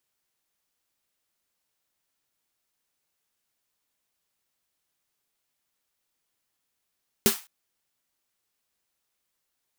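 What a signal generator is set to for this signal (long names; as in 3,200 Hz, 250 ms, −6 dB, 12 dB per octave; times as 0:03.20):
synth snare length 0.21 s, tones 220 Hz, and 400 Hz, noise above 790 Hz, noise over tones −1.5 dB, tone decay 0.12 s, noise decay 0.31 s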